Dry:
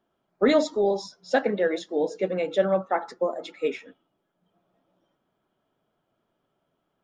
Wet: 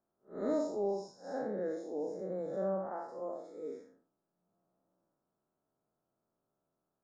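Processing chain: spectral blur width 166 ms; Butterworth band-stop 2.8 kHz, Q 0.66; trim -8 dB

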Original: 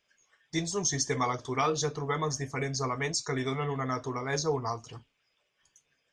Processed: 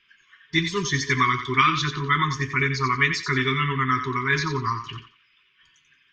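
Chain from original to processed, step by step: FFT filter 130 Hz 0 dB, 640 Hz -4 dB, 1.6 kHz +6 dB, 3.1 kHz +8 dB, 9.2 kHz -23 dB; FFT band-reject 430–930 Hz; thinning echo 89 ms, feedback 29%, high-pass 630 Hz, level -8 dB; trim +8 dB

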